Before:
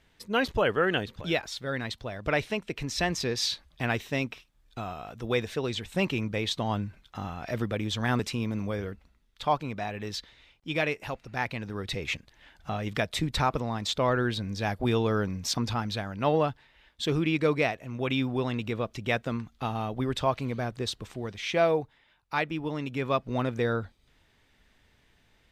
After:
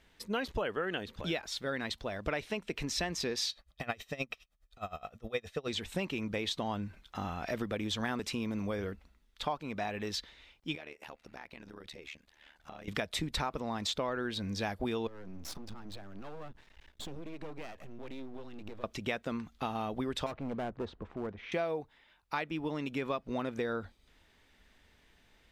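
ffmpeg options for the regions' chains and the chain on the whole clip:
-filter_complex "[0:a]asettb=1/sr,asplit=3[a][b][c];[a]atrim=end=3.494[d];[b]atrim=start=3.49:end=5.68,asetpts=PTS-STARTPTS,afade=t=in:d=0.004:c=qsin,afade=t=out:st=2.186:d=0.004:c=qsin,aecho=1:1:1.6:0.5,atrim=end_sample=96579,aeval=exprs='val(0)*pow(10,-24*(0.5-0.5*cos(2*PI*9.6*n/s))/20)':c=same[e];[c]atrim=start=5.676[f];[d][e]acrossfade=d=0.004:c1=hsin:c2=qsin[g];[g][f]acrossfade=d=0.004:c1=qsin:c2=hsin,asettb=1/sr,asplit=3[h][i][j];[h]atrim=end=10.754[k];[i]atrim=start=10.75:end=12.88,asetpts=PTS-STARTPTS,afade=t=in:d=0.004:c=qsin,afade=t=out:st=2.126:d=0.004:c=qsin,lowshelf=f=170:g=-8.5,acompressor=threshold=-42dB:ratio=4:attack=3.2:release=140:knee=1:detection=peak,tremolo=f=74:d=0.857[l];[j]atrim=start=12.876[m];[k][l]acrossfade=d=0.004:c1=hsin:c2=qsin[n];[n][m]acrossfade=d=0.004:c1=qsin:c2=hsin,asettb=1/sr,asplit=3[o][p][q];[o]atrim=end=15.074[r];[p]atrim=start=15.07:end=18.84,asetpts=PTS-STARTPTS,afade=t=in:d=0.004:c=qsin,afade=t=out:st=3.766:d=0.004:c=qsin,lowshelf=f=340:g=11.5,acompressor=threshold=-36dB:ratio=5:attack=3.2:release=140:knee=1:detection=peak,aeval=exprs='max(val(0),0)':c=same[s];[q]atrim=start=18.836[t];[r][s]acrossfade=d=0.004:c1=hsin:c2=qsin[u];[u][t]acrossfade=d=0.004:c1=qsin:c2=hsin,asettb=1/sr,asplit=3[v][w][x];[v]atrim=end=20.264[y];[w]atrim=start=20.26:end=21.52,asetpts=PTS-STARTPTS,afade=t=in:d=0.004:c=qsin,afade=t=out:st=1.256:d=0.004:c=qsin,lowpass=1.2k,asoftclip=type=hard:threshold=-30.5dB[z];[x]atrim=start=21.516[aa];[y][z]acrossfade=d=0.004:c1=hsin:c2=qsin[ab];[ab][aa]acrossfade=d=0.004:c1=qsin:c2=hsin,equalizer=f=120:t=o:w=0.45:g=-10.5,acompressor=threshold=-31dB:ratio=6"

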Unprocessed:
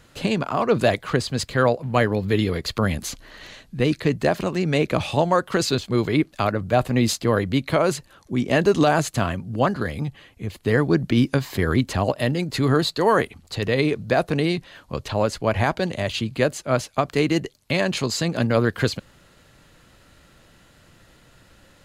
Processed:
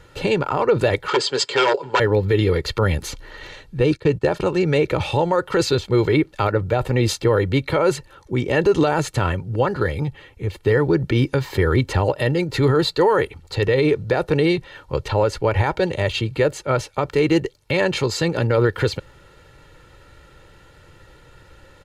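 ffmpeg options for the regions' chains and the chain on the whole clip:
-filter_complex "[0:a]asettb=1/sr,asplit=3[a][b][c];[a]atrim=end=1.084[d];[b]atrim=start=1.08:end=2,asetpts=PTS-STARTPTS,afade=t=in:d=0.004:c=qsin,afade=t=out:st=0.916:d=0.004:c=qsin,aecho=1:1:7.1:0.48,atrim=end_sample=40572,aeval=exprs='0.211*(abs(mod(val(0)/0.211+3,4)-2)-1)':c=same,highpass=370,equalizer=f=380:t=q:w=4:g=9,equalizer=f=990:t=q:w=4:g=6,equalizer=f=1.5k:t=q:w=4:g=5,equalizer=f=3.2k:t=q:w=4:g=9,equalizer=f=4.8k:t=q:w=4:g=8,equalizer=f=7.4k:t=q:w=4:g=9,lowpass=f=8.4k:w=0.5412,lowpass=f=8.4k:w=1.3066[e];[c]atrim=start=1.996[f];[d][e]acrossfade=d=0.004:c1=hsin:c2=qsin[g];[g][f]acrossfade=d=0.004:c1=qsin:c2=hsin,asettb=1/sr,asplit=3[h][i][j];[h]atrim=end=3.804[k];[i]atrim=start=3.8:end=4.62,asetpts=PTS-STARTPTS,afade=t=in:d=0.004:c=qsin,afade=t=out:st=0.816:d=0.004:c=qsin,agate=range=-17dB:threshold=-33dB:ratio=16:release=100:detection=peak,lowpass=f=12k:w=0.5412,lowpass=f=12k:w=1.3066,bandreject=f=2k:w=7.3[l];[j]atrim=start=4.616[m];[k][l]acrossfade=d=0.004:c1=hsin:c2=qsin[n];[n][m]acrossfade=d=0.004:c1=qsin:c2=hsin,highshelf=f=4.3k:g=-9.5,aecho=1:1:2.2:0.64,alimiter=level_in=11dB:limit=-1dB:release=50:level=0:latency=1,volume=-7dB"

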